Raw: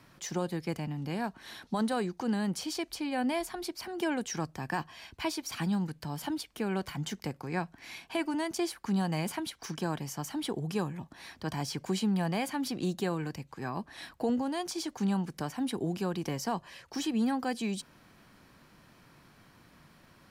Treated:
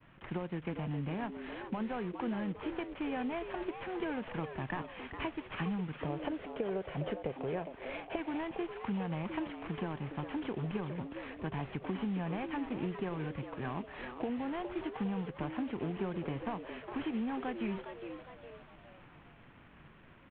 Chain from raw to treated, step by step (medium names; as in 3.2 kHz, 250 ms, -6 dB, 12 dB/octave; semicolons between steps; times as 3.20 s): CVSD coder 16 kbps; 5.92–8.16 s: high-order bell 510 Hz +12.5 dB 1 oct; compression, threshold -34 dBFS, peak gain reduction 13 dB; bass shelf 72 Hz +9.5 dB; frequency-shifting echo 410 ms, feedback 43%, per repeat +120 Hz, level -9 dB; expander -54 dBFS